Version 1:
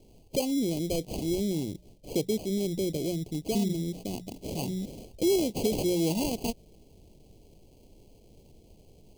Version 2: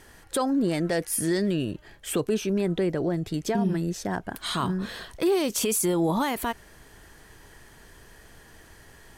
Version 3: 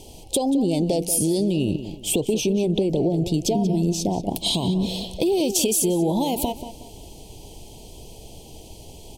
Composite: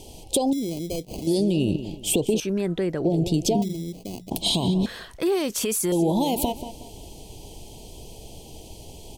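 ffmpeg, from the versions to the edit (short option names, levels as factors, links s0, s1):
-filter_complex "[0:a]asplit=2[s0][s1];[1:a]asplit=2[s2][s3];[2:a]asplit=5[s4][s5][s6][s7][s8];[s4]atrim=end=0.532[s9];[s0]atrim=start=0.528:end=1.272[s10];[s5]atrim=start=1.268:end=2.402[s11];[s2]atrim=start=2.398:end=3.052[s12];[s6]atrim=start=3.048:end=3.622[s13];[s1]atrim=start=3.618:end=4.312[s14];[s7]atrim=start=4.308:end=4.862[s15];[s3]atrim=start=4.858:end=5.922[s16];[s8]atrim=start=5.918[s17];[s9][s10]acrossfade=d=0.004:c1=hsin:c2=hsin[s18];[s18][s11]acrossfade=d=0.004:c1=hsin:c2=hsin[s19];[s19][s12]acrossfade=d=0.004:c1=hsin:c2=hsin[s20];[s20][s13]acrossfade=d=0.004:c1=hsin:c2=hsin[s21];[s21][s14]acrossfade=d=0.004:c1=hsin:c2=hsin[s22];[s22][s15]acrossfade=d=0.004:c1=hsin:c2=hsin[s23];[s23][s16]acrossfade=d=0.004:c1=hsin:c2=hsin[s24];[s24][s17]acrossfade=d=0.004:c1=hsin:c2=hsin"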